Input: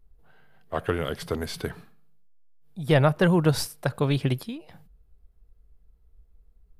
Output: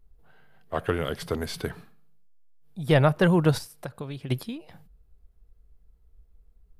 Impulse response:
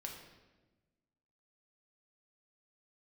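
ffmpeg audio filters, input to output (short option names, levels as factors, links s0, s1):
-filter_complex "[0:a]asplit=3[s0][s1][s2];[s0]afade=t=out:st=3.57:d=0.02[s3];[s1]acompressor=threshold=0.02:ratio=6,afade=t=in:st=3.57:d=0.02,afade=t=out:st=4.29:d=0.02[s4];[s2]afade=t=in:st=4.29:d=0.02[s5];[s3][s4][s5]amix=inputs=3:normalize=0"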